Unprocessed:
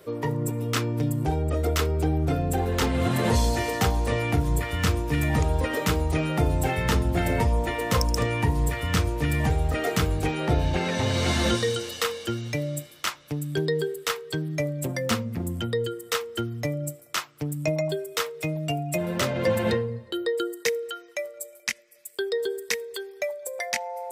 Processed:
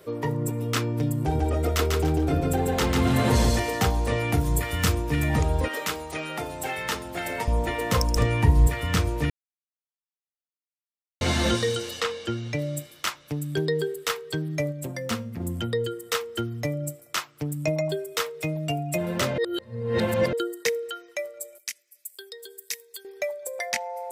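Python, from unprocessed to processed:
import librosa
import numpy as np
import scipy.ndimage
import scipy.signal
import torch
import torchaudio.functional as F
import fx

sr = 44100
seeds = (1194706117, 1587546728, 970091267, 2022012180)

y = fx.echo_feedback(x, sr, ms=145, feedback_pct=27, wet_db=-3.5, at=(1.2, 3.6))
y = fx.high_shelf(y, sr, hz=6700.0, db=8.5, at=(4.32, 4.95))
y = fx.highpass(y, sr, hz=820.0, slope=6, at=(5.68, 7.48))
y = fx.low_shelf(y, sr, hz=81.0, db=12.0, at=(8.16, 8.67))
y = fx.air_absorb(y, sr, metres=61.0, at=(12.0, 12.59))
y = fx.comb_fb(y, sr, f0_hz=230.0, decay_s=0.52, harmonics='all', damping=0.0, mix_pct=40, at=(14.71, 15.4), fade=0.02)
y = fx.pre_emphasis(y, sr, coefficient=0.9, at=(21.58, 23.05))
y = fx.edit(y, sr, fx.silence(start_s=9.3, length_s=1.91),
    fx.reverse_span(start_s=19.38, length_s=0.95), tone=tone)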